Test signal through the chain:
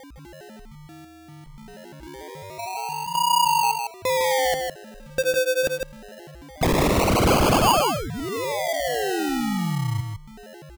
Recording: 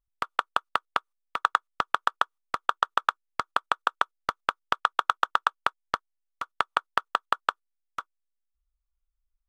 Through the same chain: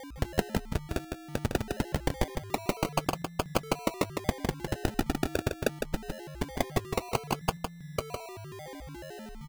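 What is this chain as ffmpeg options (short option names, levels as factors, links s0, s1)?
-filter_complex "[0:a]highshelf=f=2700:t=q:w=3:g=13.5,aeval=exprs='val(0)+0.00562*sin(2*PI*7500*n/s)':c=same,acrusher=samples=33:mix=1:aa=0.000001:lfo=1:lforange=19.8:lforate=0.23,aeval=exprs='0.126*(abs(mod(val(0)/0.126+3,4)-2)-1)':c=same,asplit=2[s0][s1];[s1]aecho=0:1:157:0.531[s2];[s0][s2]amix=inputs=2:normalize=0,volume=1.58"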